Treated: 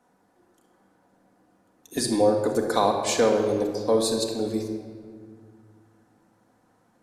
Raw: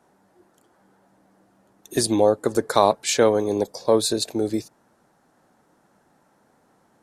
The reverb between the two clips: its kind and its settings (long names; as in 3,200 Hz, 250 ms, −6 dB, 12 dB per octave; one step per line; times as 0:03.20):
rectangular room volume 3,000 cubic metres, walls mixed, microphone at 1.9 metres
level −5.5 dB